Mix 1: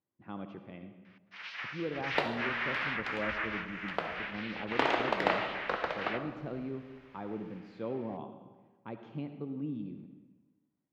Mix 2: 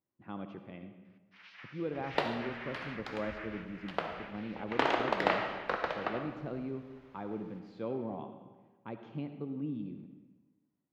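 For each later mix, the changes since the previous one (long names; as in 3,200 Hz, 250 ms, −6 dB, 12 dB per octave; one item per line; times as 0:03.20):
first sound −11.5 dB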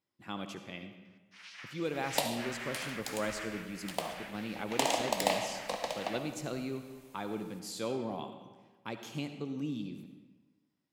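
speech: remove low-pass filter 1,100 Hz 6 dB per octave
second sound: add phaser with its sweep stopped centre 380 Hz, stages 6
master: remove high-frequency loss of the air 280 metres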